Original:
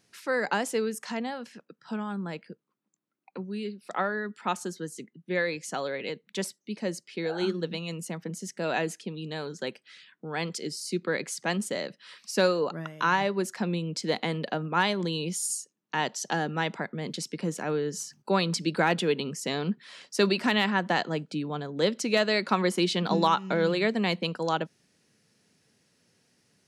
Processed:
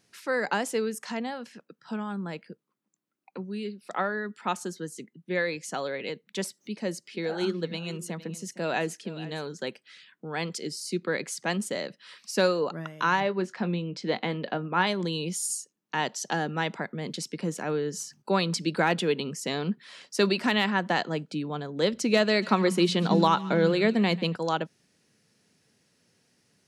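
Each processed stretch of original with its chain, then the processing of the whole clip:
6.45–9.46 s: upward compressor, threshold -42 dBFS + delay 462 ms -16.5 dB
13.20–14.87 s: low-pass 3.8 kHz + doubling 22 ms -13.5 dB
21.93–24.36 s: bass shelf 330 Hz +6.5 dB + hum notches 60/120/180 Hz + thinning echo 141 ms, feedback 49%, high-pass 1 kHz, level -17.5 dB
whole clip: none

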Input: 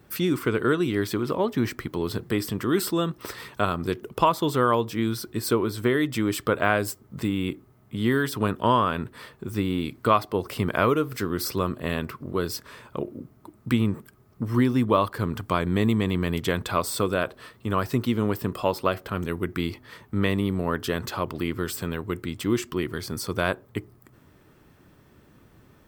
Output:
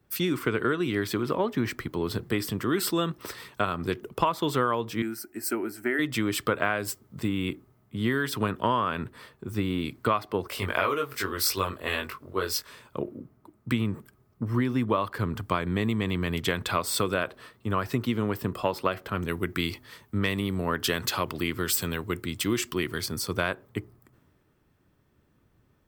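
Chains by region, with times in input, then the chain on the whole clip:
5.02–5.99 s: high-pass 250 Hz 6 dB/octave + static phaser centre 720 Hz, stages 8
10.47–12.69 s: peaking EQ 170 Hz -12.5 dB 1.7 oct + doubling 21 ms -3 dB
19.28–23.06 s: treble shelf 3.5 kHz +6 dB + hard clipper -11 dBFS
whole clip: dynamic bell 2.2 kHz, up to +5 dB, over -37 dBFS, Q 0.71; compression 6:1, threshold -22 dBFS; three bands expanded up and down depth 40%

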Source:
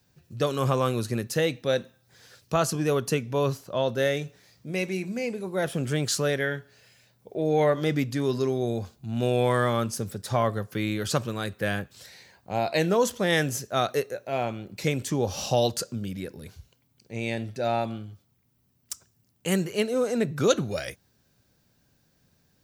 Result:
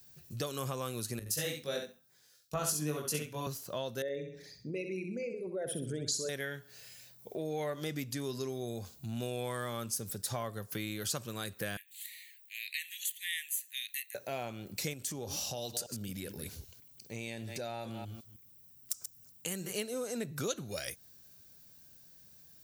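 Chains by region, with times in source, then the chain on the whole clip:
1.19–3.47 s: doubling 20 ms -2.5 dB + feedback delay 66 ms, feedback 18%, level -4.5 dB + three bands expanded up and down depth 100%
4.02–6.29 s: resonances exaggerated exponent 2 + flutter echo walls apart 11 m, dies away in 0.48 s
11.77–14.15 s: steep high-pass 1.8 kHz 96 dB/octave + static phaser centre 2.3 kHz, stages 4
14.93–19.73 s: chunks repeated in reverse 156 ms, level -13.5 dB + compression 2:1, threshold -35 dBFS
whole clip: treble shelf 3.7 kHz +11.5 dB; compression 3:1, threshold -35 dBFS; treble shelf 11 kHz +7 dB; trim -2.5 dB

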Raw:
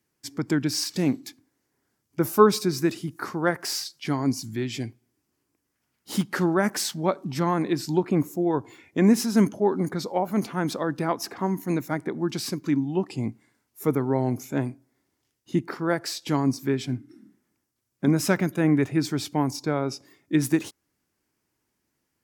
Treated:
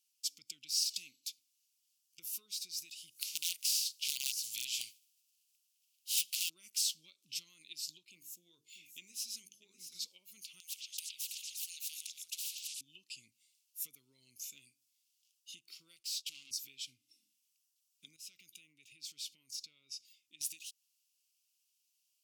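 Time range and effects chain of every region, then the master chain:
3.20–6.48 s: spectral contrast reduction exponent 0.61 + integer overflow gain 17.5 dB
8.08–10.06 s: hum notches 50/100/150/200/250/300/350/400/450 Hz + delay 643 ms -14 dB
10.60–12.81 s: compression 5:1, threshold -35 dBFS + repeats whose band climbs or falls 118 ms, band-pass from 2.9 kHz, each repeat 0.7 oct, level -8.5 dB + spectrum-flattening compressor 10:1
15.96–16.51 s: gate -44 dBFS, range -15 dB + valve stage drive 34 dB, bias 0.2
18.16–20.41 s: compression 4:1, threshold -35 dBFS + treble shelf 3.9 kHz -6 dB
whole clip: compression 6:1, threshold -30 dBFS; elliptic high-pass 2.7 kHz, stop band 40 dB; trim +2 dB

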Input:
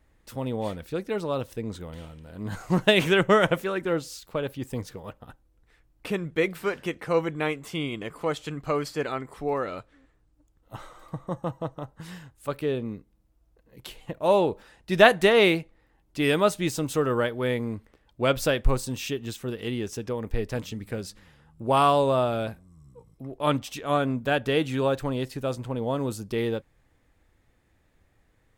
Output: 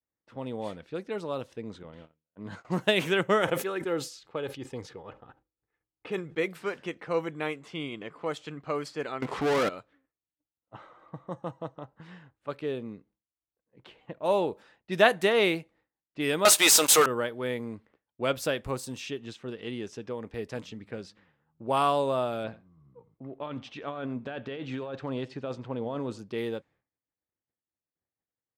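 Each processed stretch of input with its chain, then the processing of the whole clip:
1.83–2.65 s: band-stop 760 Hz, Q 17 + gate -41 dBFS, range -21 dB
3.41–6.38 s: comb 2.4 ms, depth 34% + decay stretcher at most 120 dB/s
9.22–9.69 s: low-pass 3.6 kHz + waveshaping leveller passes 5
16.45–17.06 s: high-pass 660 Hz + treble shelf 3 kHz +9.5 dB + waveshaping leveller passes 5
22.44–26.19 s: compressor with a negative ratio -28 dBFS + distance through air 120 m + delay 88 ms -19.5 dB
whole clip: expander -49 dBFS; level-controlled noise filter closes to 1.8 kHz, open at -22.5 dBFS; Bessel high-pass 160 Hz, order 2; trim -4.5 dB

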